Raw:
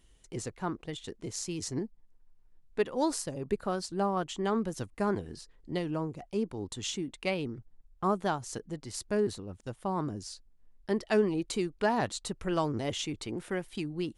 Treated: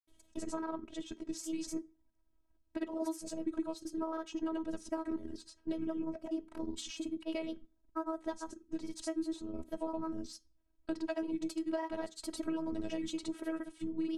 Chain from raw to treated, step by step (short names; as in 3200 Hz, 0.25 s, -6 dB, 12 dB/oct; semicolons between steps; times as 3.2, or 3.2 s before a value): grains 0.1 s, pitch spread up and down by 3 st; HPF 61 Hz 12 dB/oct; robotiser 321 Hz; compressor 4:1, threshold -38 dBFS, peak gain reduction 12 dB; tilt shelf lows +4.5 dB; on a send: reverb RT60 0.30 s, pre-delay 3 ms, DRR 12 dB; on the sum: gain +2.5 dB